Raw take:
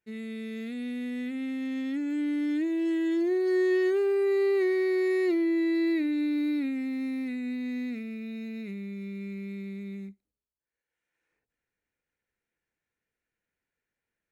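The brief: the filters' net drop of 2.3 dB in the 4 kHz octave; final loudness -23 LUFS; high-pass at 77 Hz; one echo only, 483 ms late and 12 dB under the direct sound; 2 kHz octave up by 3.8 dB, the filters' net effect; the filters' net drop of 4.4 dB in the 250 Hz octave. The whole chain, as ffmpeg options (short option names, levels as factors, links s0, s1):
-af "highpass=77,equalizer=f=250:t=o:g=-6.5,equalizer=f=2000:t=o:g=5,equalizer=f=4000:t=o:g=-4,aecho=1:1:483:0.251,volume=2.66"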